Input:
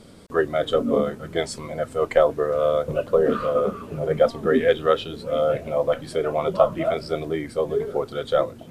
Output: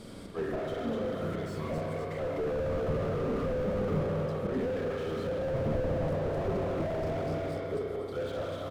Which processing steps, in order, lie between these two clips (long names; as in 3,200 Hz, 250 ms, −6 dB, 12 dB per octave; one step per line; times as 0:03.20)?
0:05.40–0:06.29: low-shelf EQ 320 Hz +8.5 dB
volume swells 376 ms
on a send: repeating echo 250 ms, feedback 28%, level −7 dB
on the sum: spring reverb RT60 2.2 s, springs 31/45 ms, chirp 30 ms, DRR −0.5 dB
slew-rate limiting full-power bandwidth 15 Hz